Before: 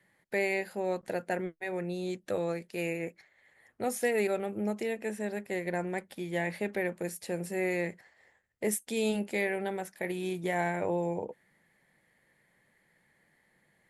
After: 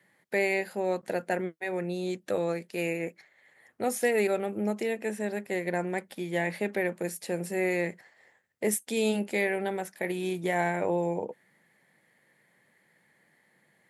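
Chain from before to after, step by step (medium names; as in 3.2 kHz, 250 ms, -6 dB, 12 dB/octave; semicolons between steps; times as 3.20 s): high-pass 130 Hz; trim +3 dB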